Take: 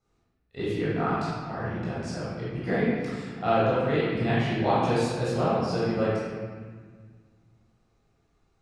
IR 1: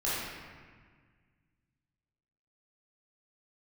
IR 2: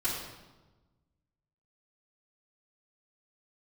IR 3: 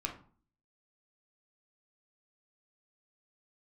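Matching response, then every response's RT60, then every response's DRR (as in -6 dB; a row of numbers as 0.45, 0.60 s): 1; 1.6, 1.2, 0.45 s; -10.0, -11.0, 2.0 dB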